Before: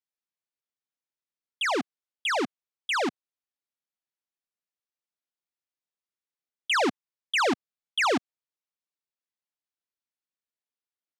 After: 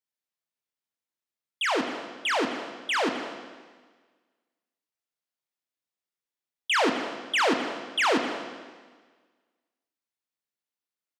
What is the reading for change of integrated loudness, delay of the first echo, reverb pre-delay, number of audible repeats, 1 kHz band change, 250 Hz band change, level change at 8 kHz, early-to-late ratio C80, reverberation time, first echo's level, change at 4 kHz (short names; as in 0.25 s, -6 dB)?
+0.5 dB, 0.261 s, 16 ms, 1, +1.5 dB, +1.5 dB, +0.5 dB, 7.5 dB, 1.5 s, -18.0 dB, +1.5 dB